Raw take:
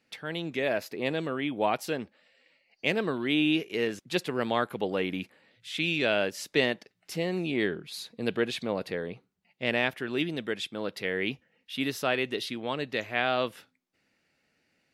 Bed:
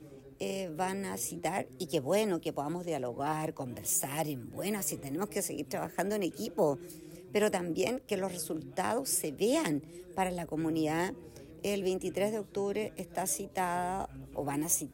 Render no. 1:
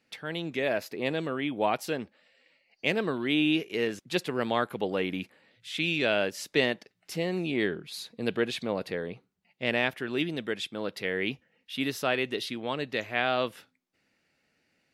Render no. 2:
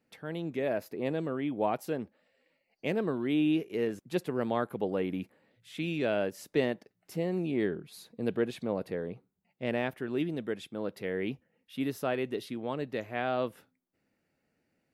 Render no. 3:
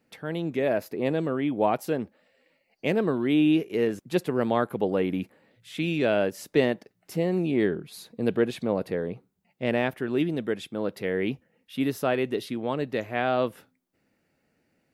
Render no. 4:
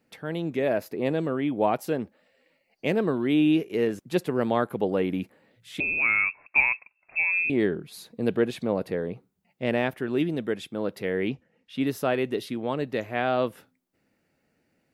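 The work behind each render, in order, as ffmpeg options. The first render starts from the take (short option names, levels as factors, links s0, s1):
-af anull
-af "equalizer=f=3800:w=0.38:g=-12.5"
-af "volume=2"
-filter_complex "[0:a]asettb=1/sr,asplit=3[s0][s1][s2];[s0]atrim=end=5.804[s3];[s1]atrim=start=5.8:end=7.5,asetpts=PTS-STARTPTS,afade=t=in:d=0.004:c=qsin,afade=t=out:st=1.696:d=0.004:c=qsin,lowpass=f=2400:t=q:w=0.5098,lowpass=f=2400:t=q:w=0.6013,lowpass=f=2400:t=q:w=0.9,lowpass=f=2400:t=q:w=2.563,afreqshift=-2800[s4];[s2]atrim=start=7.496[s5];[s3][s4]acrossfade=d=0.004:c1=hsin:c2=qsin[s6];[s6][s5]acrossfade=d=0.004:c1=qsin:c2=hsin,asettb=1/sr,asplit=3[s7][s8][s9];[s7]atrim=end=11.284[s10];[s8]atrim=start=11.28:end=11.87,asetpts=PTS-STARTPTS,afade=t=in:d=0.004:c=qsin,afade=t=out:st=0.586:d=0.004:c=qsin,lowpass=6900[s11];[s9]atrim=start=11.866[s12];[s10][s11]acrossfade=d=0.004:c1=hsin:c2=qsin[s13];[s13][s12]acrossfade=d=0.004:c1=qsin:c2=hsin"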